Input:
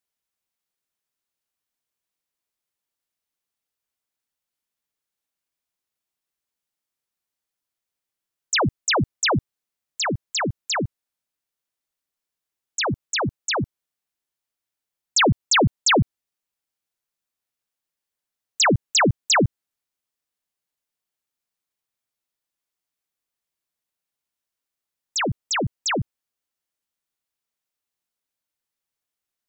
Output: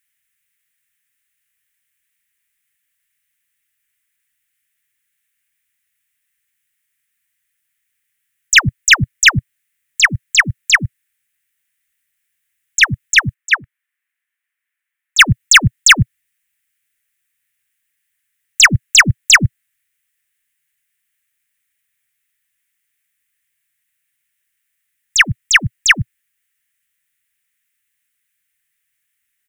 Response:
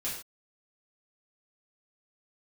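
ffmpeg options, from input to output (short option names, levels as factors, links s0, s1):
-filter_complex "[0:a]firequalizer=gain_entry='entry(120,0);entry(470,-28);entry(1800,13);entry(4400,-4);entry(8600,7)':delay=0.05:min_phase=1,aeval=exprs='0.316*(cos(1*acos(clip(val(0)/0.316,-1,1)))-cos(1*PI/2))+0.00891*(cos(4*acos(clip(val(0)/0.316,-1,1)))-cos(4*PI/2))':c=same,asettb=1/sr,asplit=3[s0][s1][s2];[s0]atrim=end=13.344[s3];[s1]atrim=start=13.34:end=15.19,asetpts=PTS-STARTPTS,afade=t=in:d=0.004:c=qsin,afade=t=out:st=1.846:d=0.004:c=qsin,acrossover=split=400 2400:gain=0.0891 1 0.224[s4][s5][s6];[s4][s5][s6]amix=inputs=3:normalize=0[s7];[s2]atrim=start=15.186[s8];[s3][s7]acrossfade=d=0.004:c1=hsin:c2=qsin[s9];[s9][s8]acrossfade=d=0.004:c1=qsin:c2=hsin,volume=2.66"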